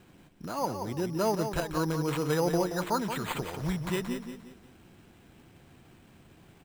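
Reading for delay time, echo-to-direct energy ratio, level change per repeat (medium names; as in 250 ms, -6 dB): 177 ms, -7.0 dB, -8.5 dB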